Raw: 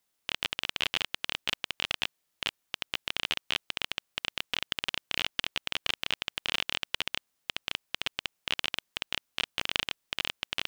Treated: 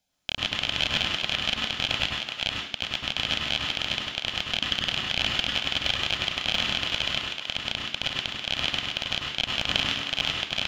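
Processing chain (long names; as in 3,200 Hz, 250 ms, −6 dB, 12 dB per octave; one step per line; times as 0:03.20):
high-shelf EQ 6,700 Hz −12 dB
feedback echo with a high-pass in the loop 378 ms, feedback 16%, level −6.5 dB
convolution reverb RT60 0.70 s, pre-delay 88 ms, DRR −0.5 dB
level +3 dB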